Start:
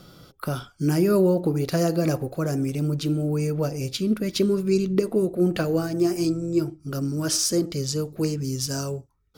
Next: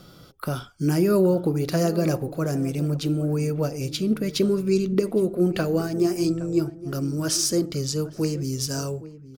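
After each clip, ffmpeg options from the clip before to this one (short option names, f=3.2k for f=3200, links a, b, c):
-filter_complex "[0:a]asplit=2[a][b];[b]adelay=816.3,volume=-16dB,highshelf=f=4k:g=-18.4[c];[a][c]amix=inputs=2:normalize=0"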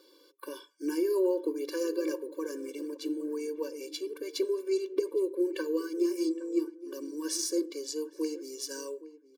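-af "afftfilt=real='re*eq(mod(floor(b*sr/1024/300),2),1)':imag='im*eq(mod(floor(b*sr/1024/300),2),1)':win_size=1024:overlap=0.75,volume=-6dB"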